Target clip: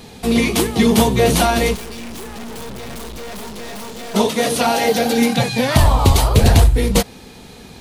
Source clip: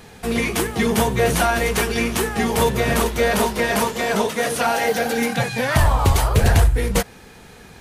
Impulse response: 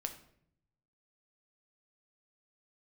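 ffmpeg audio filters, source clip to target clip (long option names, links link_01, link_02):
-filter_complex "[0:a]equalizer=frequency=250:width_type=o:width=0.67:gain=5,equalizer=frequency=1600:width_type=o:width=0.67:gain=-7,equalizer=frequency=4000:width_type=o:width=0.67:gain=5,asplit=3[link_01][link_02][link_03];[link_01]afade=type=out:start_time=1.74:duration=0.02[link_04];[link_02]aeval=exprs='(tanh(50.1*val(0)+0.75)-tanh(0.75))/50.1':channel_layout=same,afade=type=in:start_time=1.74:duration=0.02,afade=type=out:start_time=4.14:duration=0.02[link_05];[link_03]afade=type=in:start_time=4.14:duration=0.02[link_06];[link_04][link_05][link_06]amix=inputs=3:normalize=0,volume=3.5dB"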